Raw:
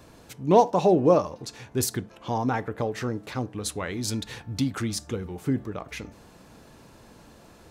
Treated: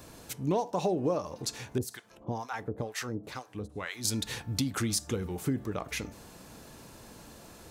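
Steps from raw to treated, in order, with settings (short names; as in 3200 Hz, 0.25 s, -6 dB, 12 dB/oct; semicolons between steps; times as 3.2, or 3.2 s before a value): high shelf 5700 Hz +9.5 dB; compressor 6:1, threshold -26 dBFS, peak gain reduction 14 dB; 1.78–4.05 harmonic tremolo 2.1 Hz, depth 100%, crossover 720 Hz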